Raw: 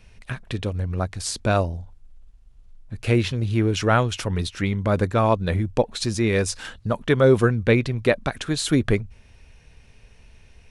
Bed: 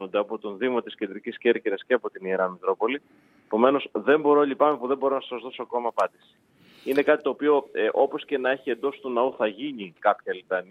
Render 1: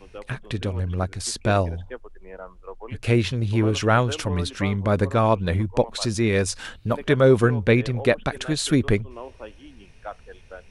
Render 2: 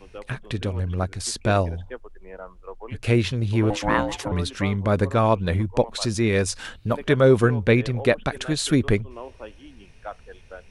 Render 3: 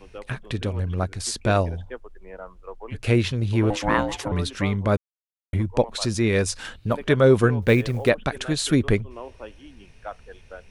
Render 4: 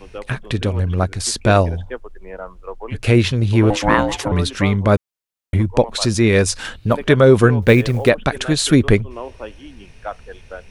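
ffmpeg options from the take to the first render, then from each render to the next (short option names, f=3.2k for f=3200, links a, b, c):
-filter_complex "[1:a]volume=-15dB[a];[0:a][a]amix=inputs=2:normalize=0"
-filter_complex "[0:a]asettb=1/sr,asplit=3[a][b][c];[a]atrim=end=3.704[d];[b]atrim=start=3.7:end=4.32,asetpts=PTS-STARTPTS,afade=t=in:d=0.004:c=qsin,afade=t=out:st=0.616:d=0.004:c=qsin,aeval=exprs='val(0)*sin(2*PI*410*n/s)':c=same[e];[c]atrim=start=4.316[f];[d][e]acrossfade=d=0.004:c1=hsin:c2=qsin[g];[g][f]acrossfade=d=0.004:c1=qsin:c2=hsin"
-filter_complex "[0:a]asettb=1/sr,asplit=3[a][b][c];[a]atrim=end=7.624[d];[b]atrim=start=7.62:end=8.09,asetpts=PTS-STARTPTS,afade=t=in:d=0.004:c=qsin,afade=t=out:st=0.466:d=0.004:c=qsin,acrusher=bits=8:mode=log:mix=0:aa=0.000001[e];[c]atrim=start=8.086[f];[d][e]acrossfade=d=0.004:c1=hsin:c2=qsin[g];[g][f]acrossfade=d=0.004:c1=qsin:c2=hsin,asplit=3[h][i][j];[h]atrim=end=4.97,asetpts=PTS-STARTPTS,afade=t=out:st=4.966:d=0.004:c=hsin[k];[i]atrim=start=4.97:end=5.53,asetpts=PTS-STARTPTS,volume=0[l];[j]atrim=start=5.53,asetpts=PTS-STARTPTS,afade=t=in:d=0.004:c=hsin[m];[k][l][m]concat=n=3:v=0:a=1"
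-af "volume=7dB,alimiter=limit=-1dB:level=0:latency=1"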